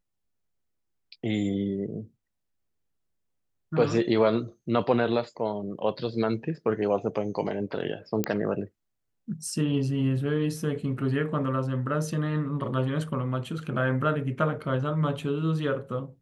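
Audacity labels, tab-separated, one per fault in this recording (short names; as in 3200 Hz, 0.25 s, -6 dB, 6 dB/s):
8.240000	8.240000	pop -11 dBFS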